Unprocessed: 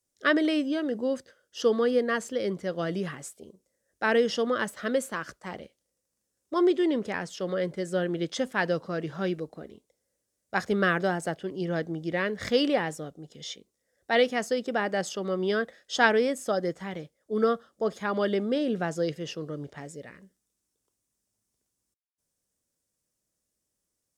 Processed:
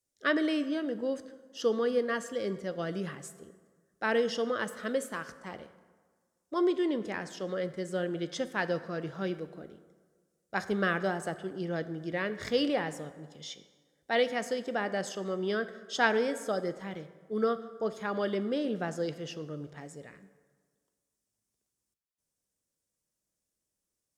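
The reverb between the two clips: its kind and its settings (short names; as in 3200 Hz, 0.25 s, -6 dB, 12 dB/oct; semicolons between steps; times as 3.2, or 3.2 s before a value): plate-style reverb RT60 1.6 s, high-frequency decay 0.6×, DRR 12 dB; gain -4.5 dB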